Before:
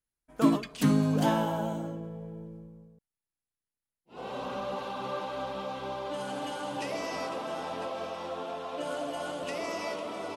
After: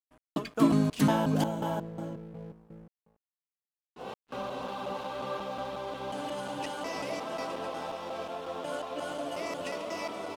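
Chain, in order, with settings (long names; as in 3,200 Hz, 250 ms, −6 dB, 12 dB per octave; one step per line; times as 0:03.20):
slices reordered back to front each 180 ms, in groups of 2
dead-zone distortion −55.5 dBFS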